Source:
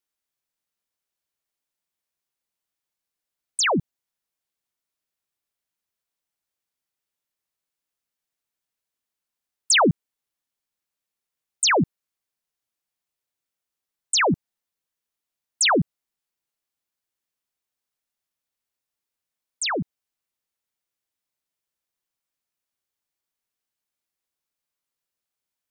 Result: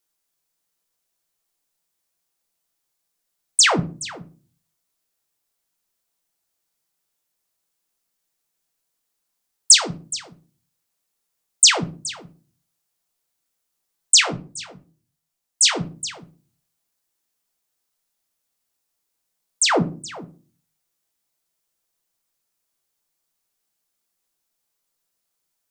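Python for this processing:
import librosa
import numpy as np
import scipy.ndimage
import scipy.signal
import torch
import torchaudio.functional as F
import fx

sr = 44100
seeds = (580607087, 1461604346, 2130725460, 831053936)

p1 = fx.high_shelf(x, sr, hz=2800.0, db=-9.5)
p2 = fx.over_compress(p1, sr, threshold_db=-23.0, ratio=-0.5)
p3 = fx.bass_treble(p2, sr, bass_db=-2, treble_db=12)
p4 = p3 + fx.echo_single(p3, sr, ms=421, db=-17.5, dry=0)
p5 = fx.room_shoebox(p4, sr, seeds[0], volume_m3=190.0, walls='furnished', distance_m=0.75)
p6 = fx.detune_double(p5, sr, cents=fx.line((14.2, 26.0), (15.74, 44.0)), at=(14.2, 15.74), fade=0.02)
y = p6 * librosa.db_to_amplitude(3.5)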